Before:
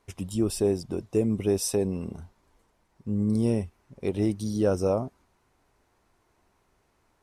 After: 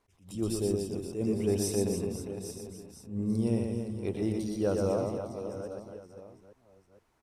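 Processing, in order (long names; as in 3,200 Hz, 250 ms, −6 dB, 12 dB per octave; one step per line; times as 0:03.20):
delay that plays each chunk backwards 516 ms, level −11 dB
0:00.57–0:01.10: parametric band 1,200 Hz −8.5 dB 1.5 octaves
reverse bouncing-ball delay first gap 120 ms, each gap 1.4×, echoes 5
level that may rise only so fast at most 150 dB per second
level −5.5 dB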